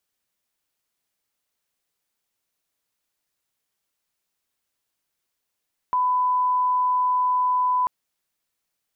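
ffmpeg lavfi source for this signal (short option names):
-f lavfi -i "sine=f=1000:d=1.94:r=44100,volume=0.06dB"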